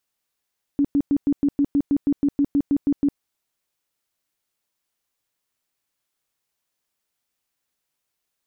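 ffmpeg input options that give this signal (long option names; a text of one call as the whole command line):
ffmpeg -f lavfi -i "aevalsrc='0.178*sin(2*PI*284*mod(t,0.16))*lt(mod(t,0.16),16/284)':duration=2.4:sample_rate=44100" out.wav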